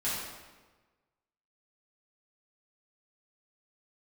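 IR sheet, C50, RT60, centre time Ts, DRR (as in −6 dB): −0.5 dB, 1.3 s, 84 ms, −11.0 dB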